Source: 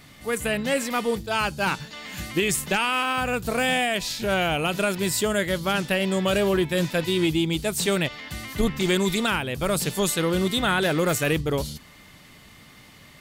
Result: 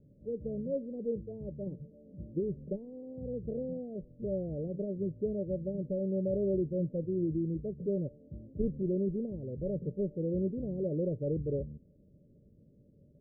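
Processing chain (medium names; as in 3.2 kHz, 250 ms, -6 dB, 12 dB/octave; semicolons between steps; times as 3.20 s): rippled Chebyshev low-pass 590 Hz, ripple 3 dB; trim -7 dB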